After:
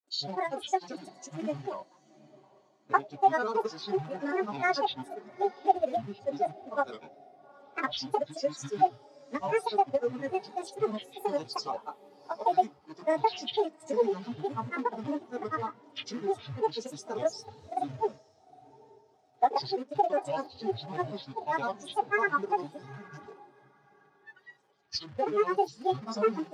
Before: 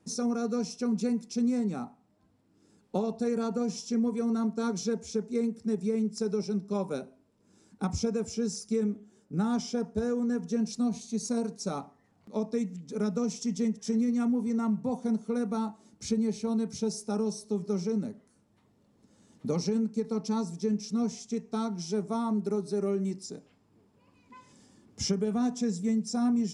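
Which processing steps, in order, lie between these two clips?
gain on a spectral selection 0:22.57–0:23.28, 260–5,500 Hz −14 dB
granular cloud, pitch spread up and down by 12 semitones
in parallel at −6.5 dB: log-companded quantiser 4 bits
on the sum: three-way crossover with the lows and the highs turned down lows −20 dB, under 540 Hz, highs −13 dB, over 7,100 Hz
notch comb filter 170 Hz
on a send: feedback delay with all-pass diffusion 818 ms, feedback 42%, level −14 dB
on the sum: every bin expanded away from the loudest bin 1.5 to 1
level +8 dB

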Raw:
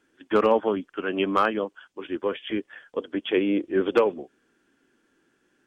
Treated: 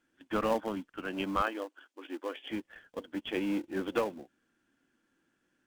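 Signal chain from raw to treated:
parametric band 410 Hz −10.5 dB 0.3 octaves
in parallel at −12 dB: sample-rate reduction 1,200 Hz, jitter 20%
0:01.42–0:02.51: on the sum: linear-phase brick-wall high-pass 240 Hz
level −8 dB

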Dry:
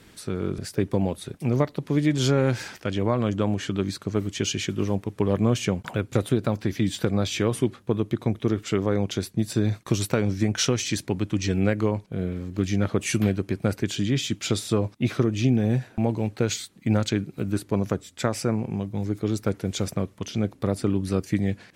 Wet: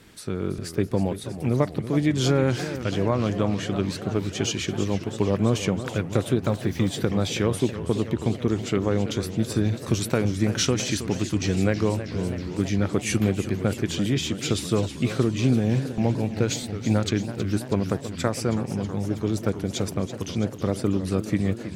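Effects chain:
0:06.43–0:06.90: centre clipping without the shift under −44 dBFS
feedback echo with a swinging delay time 326 ms, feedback 75%, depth 169 cents, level −12 dB

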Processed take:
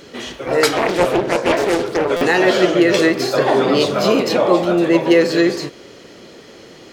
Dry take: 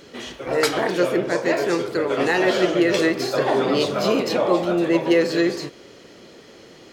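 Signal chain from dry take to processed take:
buffer that repeats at 0:02.16, samples 256, times 8
0:00.76–0:02.11: highs frequency-modulated by the lows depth 0.56 ms
level +5 dB

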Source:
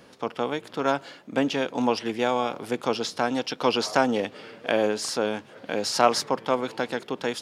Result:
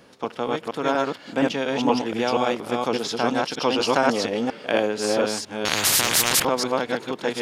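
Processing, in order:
delay that plays each chunk backwards 237 ms, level 0 dB
0:03.80–0:04.77: floating-point word with a short mantissa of 8 bits
0:05.65–0:06.45: every bin compressed towards the loudest bin 10 to 1

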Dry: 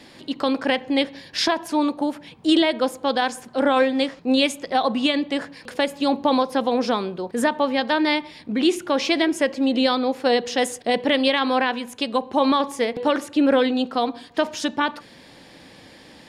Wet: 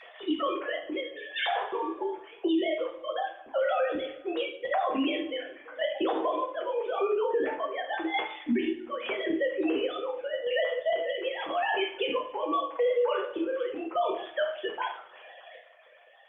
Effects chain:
three sine waves on the formant tracks
downward compressor 10 to 1, threshold −26 dBFS, peak gain reduction 22 dB
square-wave tremolo 0.86 Hz, depth 65%, duty 40%
0:11.30–0:11.89: high-shelf EQ 2,500 Hz +4.5 dB
coupled-rooms reverb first 0.44 s, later 1.6 s, from −21 dB, DRR −2.5 dB
0:02.08–0:02.49: dynamic equaliser 620 Hz, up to +6 dB, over −44 dBFS, Q 0.94
0:12.41–0:12.94: comb filter 6.1 ms, depth 66%
brickwall limiter −23 dBFS, peak gain reduction 11.5 dB
level +3.5 dB
Opus 48 kbit/s 48,000 Hz

